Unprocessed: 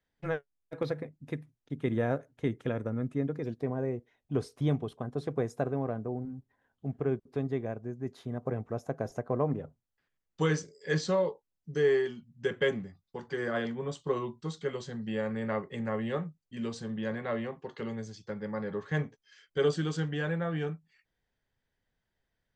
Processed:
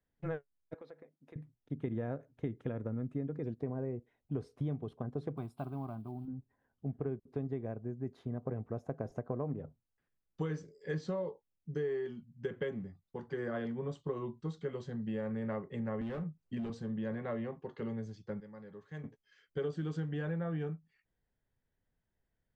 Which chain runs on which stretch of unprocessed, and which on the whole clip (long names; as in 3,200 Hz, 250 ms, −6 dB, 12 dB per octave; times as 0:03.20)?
0:00.74–0:01.36: high-pass filter 420 Hz + downward compressor 2 to 1, threshold −56 dBFS
0:05.37–0:06.28: one scale factor per block 7 bits + bass and treble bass −5 dB, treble +8 dB + phaser with its sweep stopped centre 1,800 Hz, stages 6
0:16.01–0:16.70: low-pass filter 7,400 Hz + gain into a clipping stage and back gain 33.5 dB + multiband upward and downward compressor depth 100%
0:18.40–0:19.04: high-pass filter 45 Hz + first-order pre-emphasis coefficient 0.8
whole clip: low-shelf EQ 490 Hz +6 dB; downward compressor, threshold −27 dBFS; high-shelf EQ 3,900 Hz −12 dB; level −5.5 dB